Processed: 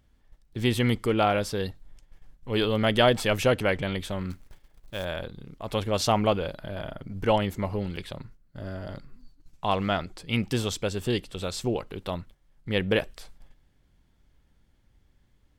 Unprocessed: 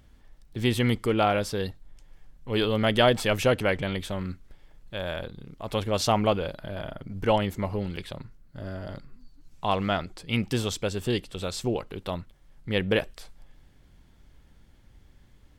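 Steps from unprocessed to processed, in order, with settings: gate -47 dBFS, range -8 dB; 4.30–5.05 s: short-mantissa float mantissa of 2-bit

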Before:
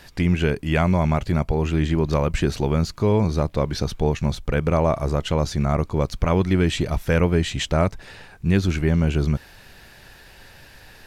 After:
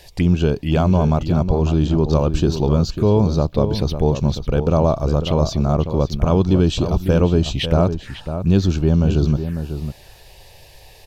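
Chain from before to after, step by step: touch-sensitive phaser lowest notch 210 Hz, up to 2 kHz, full sweep at -19 dBFS; echo from a far wall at 94 m, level -9 dB; trim +4 dB

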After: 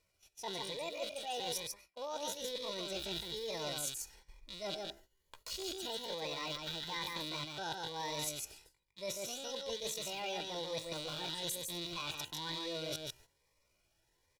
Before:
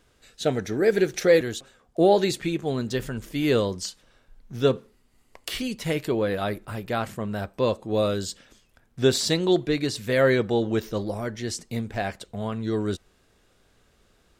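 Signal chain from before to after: rattle on loud lows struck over -39 dBFS, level -19 dBFS; de-esser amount 65%; treble shelf 10 kHz -4.5 dB; comb 3.1 ms, depth 47%; reverse; compression 5:1, threshold -37 dBFS, peak gain reduction 21.5 dB; reverse; bass shelf 380 Hz -8 dB; on a send: delay 148 ms -3.5 dB; on the sum: pitch shift +7 st; gate -58 dBFS, range -13 dB; Shepard-style phaser rising 1.1 Hz; trim +1 dB

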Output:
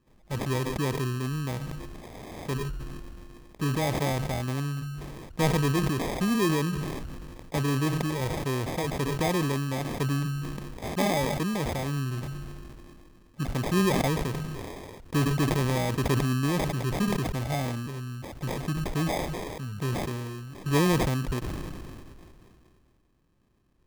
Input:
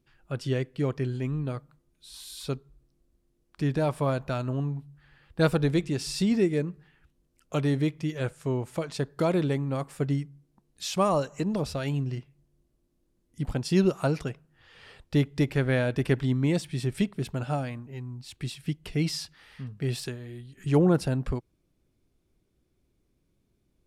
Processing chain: in parallel at 0 dB: compression, threshold -35 dBFS, peak gain reduction 17.5 dB; on the sum: sample-and-hold 31×; decay stretcher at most 23 dB/s; trim -4 dB

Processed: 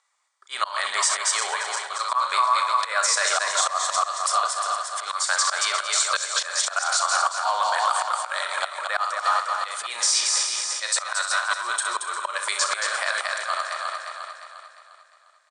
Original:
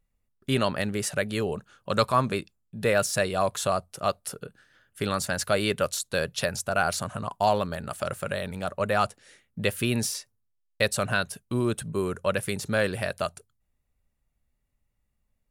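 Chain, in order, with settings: backward echo that repeats 176 ms, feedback 66%, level -10 dB; steep low-pass 9.1 kHz 96 dB/octave; peaking EQ 1.1 kHz +9.5 dB 0.72 oct; early reflections 34 ms -12.5 dB, 64 ms -12.5 dB; slow attack 393 ms; feedback delay 226 ms, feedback 16%, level -7.5 dB; in parallel at +1.5 dB: compression, threshold -36 dBFS, peak gain reduction 17 dB; on the sum: high-pass 760 Hz 24 dB/octave; treble shelf 2.1 kHz +9 dB; band-stop 2.7 kHz, Q 5.1; peak limiter -15 dBFS, peak gain reduction 9 dB; trim +4.5 dB

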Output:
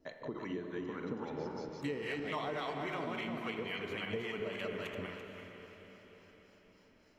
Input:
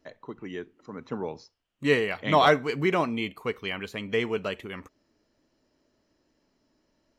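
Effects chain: backward echo that repeats 169 ms, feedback 45%, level -1 dB; harmonic tremolo 3.6 Hz, depth 70%, crossover 750 Hz; reverberation RT60 1.1 s, pre-delay 35 ms, DRR 8 dB; compression 10:1, threshold -38 dBFS, peak gain reduction 21 dB; echo that smears into a reverb 502 ms, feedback 50%, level -10 dB; trim +2 dB

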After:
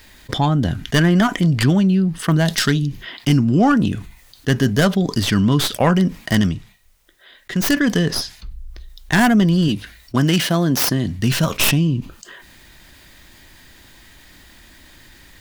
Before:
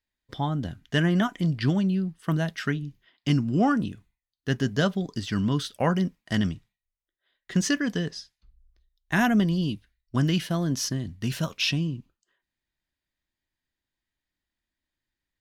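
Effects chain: tracing distortion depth 0.21 ms; 2.45–2.87 s: resonant high shelf 3.1 kHz +7 dB, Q 1.5; 6.37–7.78 s: dip -14.5 dB, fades 0.26 s; 9.68–11.19 s: high-pass 180 Hz 6 dB/octave; level flattener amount 50%; trim +6.5 dB

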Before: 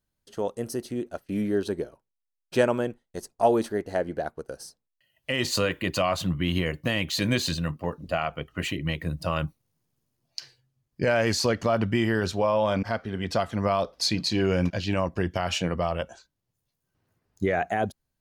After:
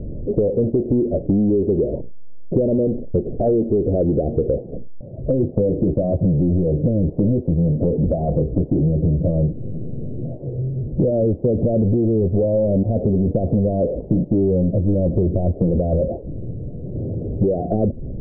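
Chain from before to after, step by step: in parallel at +1 dB: peak limiter -16.5 dBFS, peak gain reduction 7.5 dB; on the sum: power-law waveshaper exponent 0.35; steep low-pass 570 Hz 48 dB/octave; compression, threshold -20 dBFS, peak gain reduction 10.5 dB; tape noise reduction on one side only decoder only; trim +4.5 dB

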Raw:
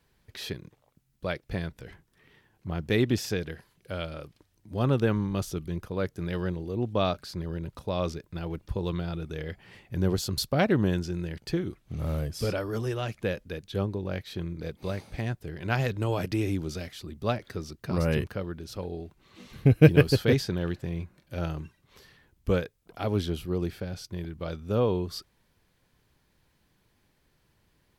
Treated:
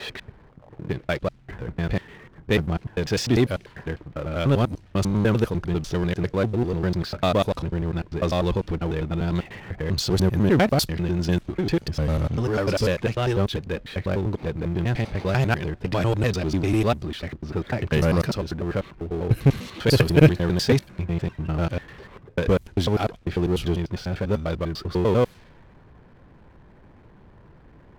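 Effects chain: slices played last to first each 99 ms, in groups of 5; level-controlled noise filter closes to 1.2 kHz, open at -23 dBFS; power-law waveshaper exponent 0.7

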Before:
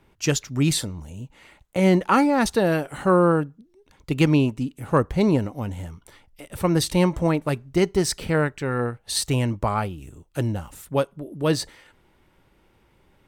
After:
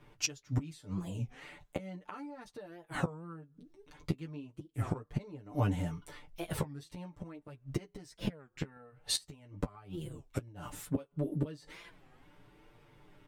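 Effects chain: treble shelf 7 kHz -6.5 dB; comb 6.8 ms, depth 89%; 8.21–10.48 s: compression 16:1, threshold -18 dBFS, peak gain reduction 8 dB; inverted gate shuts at -16 dBFS, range -28 dB; flange 0.39 Hz, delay 8.3 ms, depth 5 ms, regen -25%; warped record 33 1/3 rpm, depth 250 cents; trim +1 dB

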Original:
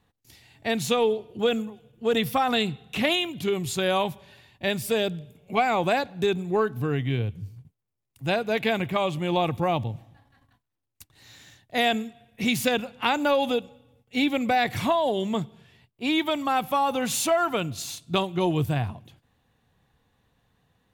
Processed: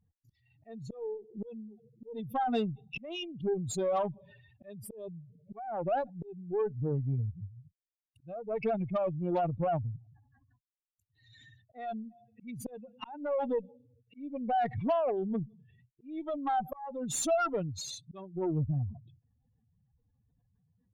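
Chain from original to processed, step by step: spectral contrast enhancement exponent 3; slow attack 457 ms; Chebyshev shaper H 6 -24 dB, 8 -39 dB, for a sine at -14.5 dBFS; trim -5 dB

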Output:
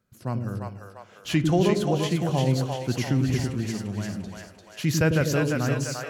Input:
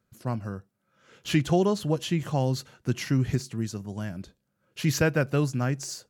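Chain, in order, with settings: two-band feedback delay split 470 Hz, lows 99 ms, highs 346 ms, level -3 dB; spring tank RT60 1.2 s, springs 50 ms, chirp 50 ms, DRR 17 dB

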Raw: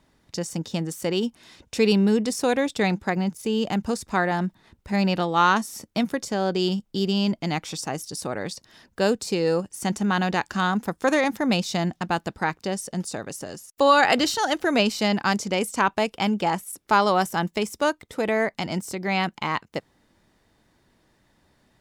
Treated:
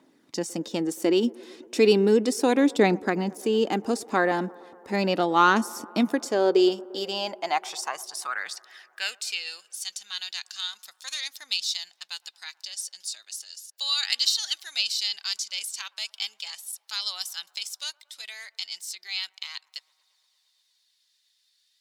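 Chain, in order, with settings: high-pass sweep 290 Hz -> 4 kHz, 6.10–9.85 s; phaser 0.35 Hz, delay 4 ms, feedback 32%; feedback echo behind a band-pass 115 ms, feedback 77%, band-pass 650 Hz, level -22 dB; trim -1.5 dB

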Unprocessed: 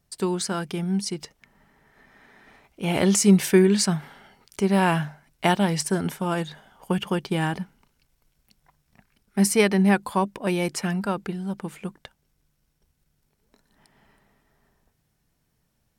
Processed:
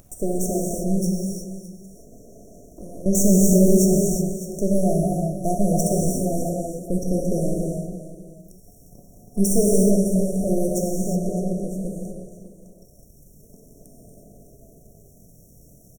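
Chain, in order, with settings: 1.05–3.06 s: compression, threshold -37 dBFS, peak gain reduction 18 dB; on a send: multi-tap echo 235/282/609 ms -13.5/-18.5/-17 dB; on the sum: half-wave rectifier; in parallel at -2 dB: peak limiter -15.5 dBFS, peak gain reduction 9.5 dB; on the sum: FFT band-reject 730–5500 Hz; upward compressor, threshold -36 dBFS; gated-style reverb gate 390 ms flat, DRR -2 dB

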